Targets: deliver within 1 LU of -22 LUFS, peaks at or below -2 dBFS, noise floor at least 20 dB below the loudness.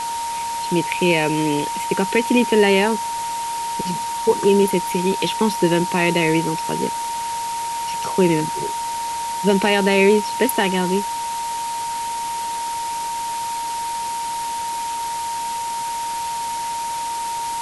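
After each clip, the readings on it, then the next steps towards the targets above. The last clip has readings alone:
steady tone 930 Hz; tone level -23 dBFS; noise floor -26 dBFS; noise floor target -41 dBFS; loudness -21.0 LUFS; peak level -3.0 dBFS; loudness target -22.0 LUFS
-> band-stop 930 Hz, Q 30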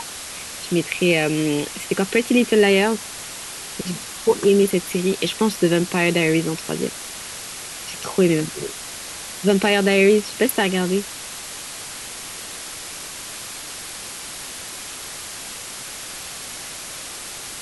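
steady tone not found; noise floor -34 dBFS; noise floor target -42 dBFS
-> noise print and reduce 8 dB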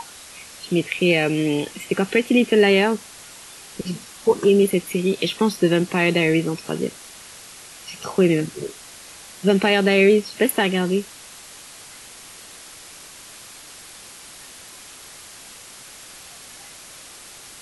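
noise floor -42 dBFS; loudness -19.5 LUFS; peak level -4.0 dBFS; loudness target -22.0 LUFS
-> trim -2.5 dB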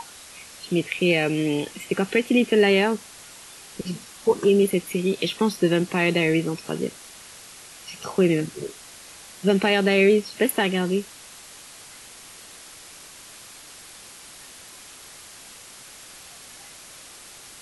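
loudness -22.0 LUFS; peak level -6.5 dBFS; noise floor -45 dBFS

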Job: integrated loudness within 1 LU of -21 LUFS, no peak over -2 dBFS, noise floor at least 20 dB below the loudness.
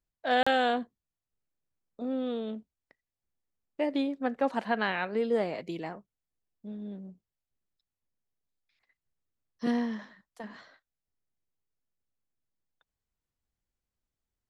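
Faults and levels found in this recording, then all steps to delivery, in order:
dropouts 1; longest dropout 35 ms; loudness -31.0 LUFS; peak level -13.0 dBFS; loudness target -21.0 LUFS
-> interpolate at 0.43 s, 35 ms; trim +10 dB

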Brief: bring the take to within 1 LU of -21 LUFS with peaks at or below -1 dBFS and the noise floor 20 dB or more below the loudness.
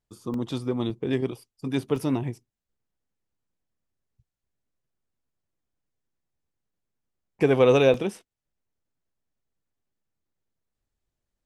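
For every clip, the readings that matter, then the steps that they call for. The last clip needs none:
dropouts 4; longest dropout 2.1 ms; loudness -24.5 LUFS; peak level -7.0 dBFS; loudness target -21.0 LUFS
-> interpolate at 0.34/0.90/1.96/7.94 s, 2.1 ms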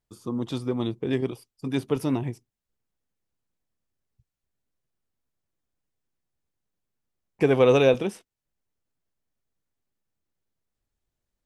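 dropouts 0; loudness -24.5 LUFS; peak level -7.0 dBFS; loudness target -21.0 LUFS
-> trim +3.5 dB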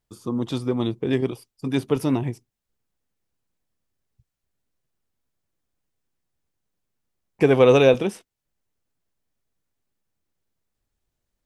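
loudness -21.0 LUFS; peak level -3.5 dBFS; noise floor -82 dBFS

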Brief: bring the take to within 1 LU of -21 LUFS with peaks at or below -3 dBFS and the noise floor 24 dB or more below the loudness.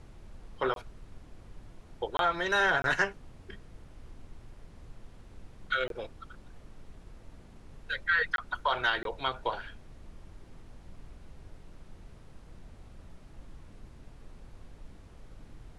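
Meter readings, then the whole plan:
dropouts 6; longest dropout 22 ms; noise floor -53 dBFS; noise floor target -55 dBFS; loudness -30.5 LUFS; peak level -14.0 dBFS; loudness target -21.0 LUFS
-> interpolate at 0.74/2.17/2.82/5.88/8.36/9.03 s, 22 ms; noise print and reduce 6 dB; trim +9.5 dB

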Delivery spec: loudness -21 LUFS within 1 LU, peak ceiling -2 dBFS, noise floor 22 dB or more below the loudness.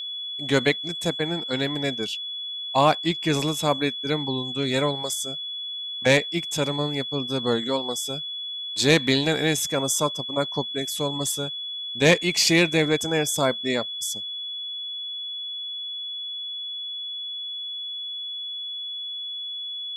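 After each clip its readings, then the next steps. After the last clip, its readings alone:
steady tone 3.4 kHz; tone level -30 dBFS; loudness -24.5 LUFS; peak level -6.0 dBFS; loudness target -21.0 LUFS
-> band-stop 3.4 kHz, Q 30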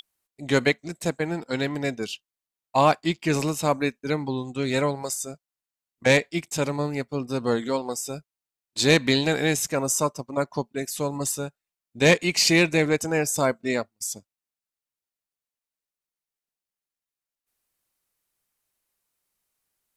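steady tone not found; loudness -24.5 LUFS; peak level -6.5 dBFS; loudness target -21.0 LUFS
-> trim +3.5 dB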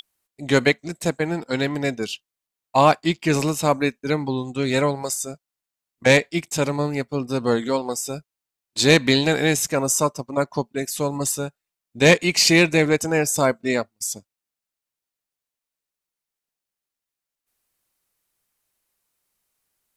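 loudness -21.0 LUFS; peak level -3.0 dBFS; noise floor -87 dBFS

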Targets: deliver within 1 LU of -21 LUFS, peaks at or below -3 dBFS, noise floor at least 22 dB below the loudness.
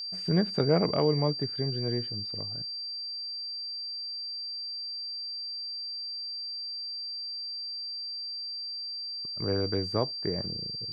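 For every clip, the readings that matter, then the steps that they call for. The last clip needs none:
steady tone 4.7 kHz; tone level -34 dBFS; loudness -31.0 LUFS; peak level -11.5 dBFS; loudness target -21.0 LUFS
-> band-stop 4.7 kHz, Q 30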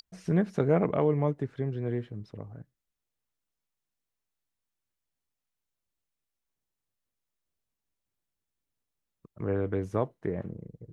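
steady tone not found; loudness -29.5 LUFS; peak level -12.5 dBFS; loudness target -21.0 LUFS
-> trim +8.5 dB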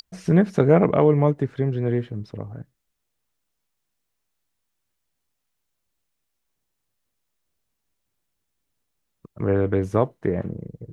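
loudness -21.0 LUFS; peak level -4.0 dBFS; noise floor -78 dBFS

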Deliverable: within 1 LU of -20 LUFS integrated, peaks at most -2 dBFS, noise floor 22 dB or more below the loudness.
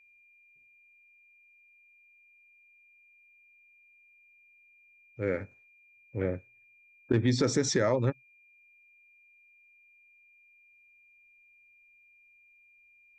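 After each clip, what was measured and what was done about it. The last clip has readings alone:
steady tone 2.4 kHz; tone level -59 dBFS; loudness -29.5 LUFS; peak level -14.5 dBFS; loudness target -20.0 LUFS
-> band-stop 2.4 kHz, Q 30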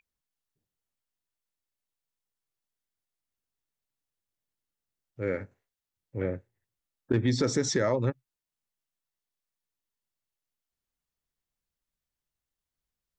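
steady tone not found; loudness -29.5 LUFS; peak level -14.5 dBFS; loudness target -20.0 LUFS
-> trim +9.5 dB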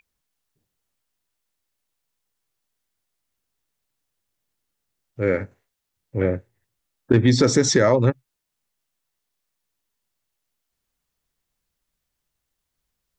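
loudness -20.0 LUFS; peak level -5.0 dBFS; noise floor -80 dBFS

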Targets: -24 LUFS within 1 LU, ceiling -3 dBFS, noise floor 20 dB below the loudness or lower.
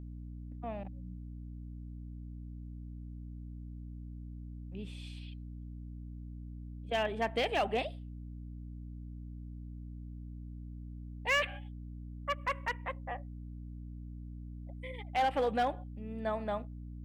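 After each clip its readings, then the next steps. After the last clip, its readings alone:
clipped samples 0.4%; clipping level -24.5 dBFS; hum 60 Hz; highest harmonic 300 Hz; hum level -42 dBFS; loudness -39.0 LUFS; peak level -24.5 dBFS; loudness target -24.0 LUFS
-> clip repair -24.5 dBFS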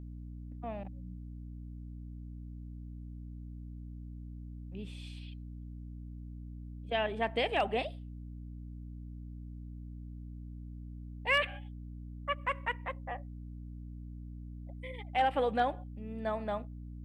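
clipped samples 0.0%; hum 60 Hz; highest harmonic 300 Hz; hum level -42 dBFS
-> de-hum 60 Hz, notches 5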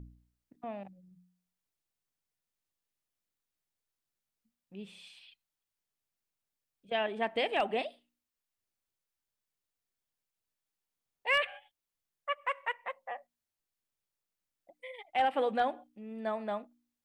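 hum not found; loudness -34.0 LUFS; peak level -17.5 dBFS; loudness target -24.0 LUFS
-> trim +10 dB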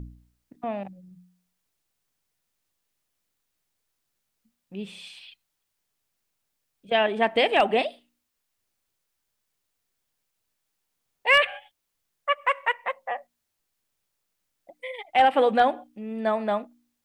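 loudness -24.0 LUFS; peak level -7.5 dBFS; noise floor -79 dBFS

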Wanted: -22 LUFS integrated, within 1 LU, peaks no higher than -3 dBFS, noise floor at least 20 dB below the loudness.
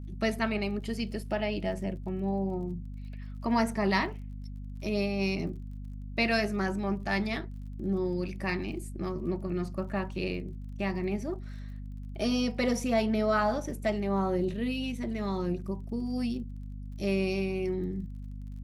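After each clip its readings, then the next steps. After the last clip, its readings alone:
tick rate 35 per s; hum 50 Hz; highest harmonic 250 Hz; hum level -37 dBFS; loudness -31.5 LUFS; peak level -12.5 dBFS; loudness target -22.0 LUFS
-> de-click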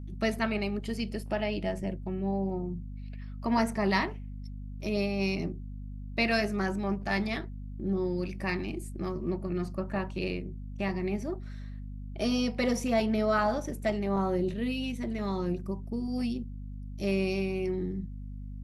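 tick rate 0.16 per s; hum 50 Hz; highest harmonic 250 Hz; hum level -37 dBFS
-> de-hum 50 Hz, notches 5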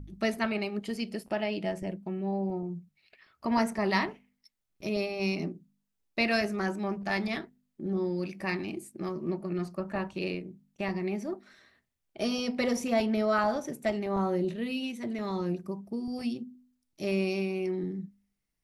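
hum not found; loudness -32.0 LUFS; peak level -13.5 dBFS; loudness target -22.0 LUFS
-> trim +10 dB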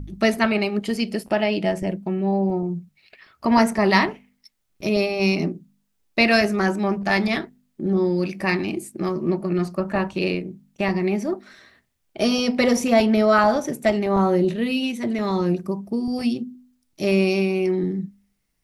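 loudness -22.0 LUFS; peak level -3.5 dBFS; noise floor -71 dBFS

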